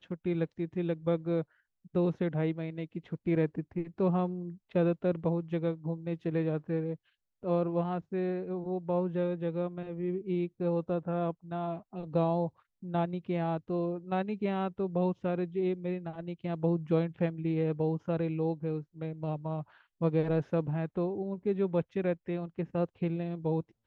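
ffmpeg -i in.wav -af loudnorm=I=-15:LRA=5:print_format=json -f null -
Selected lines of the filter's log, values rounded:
"input_i" : "-32.8",
"input_tp" : "-16.5",
"input_lra" : "1.5",
"input_thresh" : "-42.9",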